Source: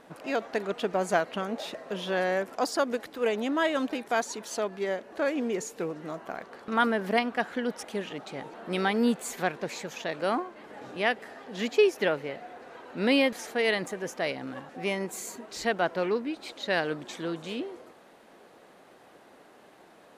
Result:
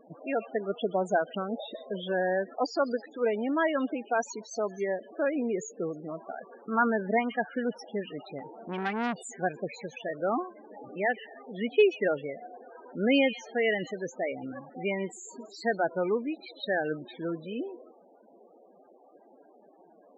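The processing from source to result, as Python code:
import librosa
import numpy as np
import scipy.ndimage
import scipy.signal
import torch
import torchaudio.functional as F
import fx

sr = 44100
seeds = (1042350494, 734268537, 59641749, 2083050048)

y = fx.echo_stepped(x, sr, ms=128, hz=3500.0, octaves=0.7, feedback_pct=70, wet_db=-8.5)
y = fx.spec_topn(y, sr, count=16)
y = fx.transformer_sat(y, sr, knee_hz=1300.0, at=(8.38, 9.39))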